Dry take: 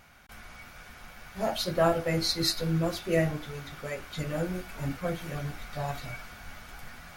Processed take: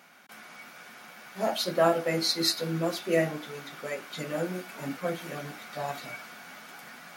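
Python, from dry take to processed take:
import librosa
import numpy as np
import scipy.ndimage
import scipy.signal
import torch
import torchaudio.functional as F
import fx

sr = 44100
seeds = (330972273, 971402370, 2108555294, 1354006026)

y = scipy.signal.sosfilt(scipy.signal.butter(4, 190.0, 'highpass', fs=sr, output='sos'), x)
y = y * 10.0 ** (1.5 / 20.0)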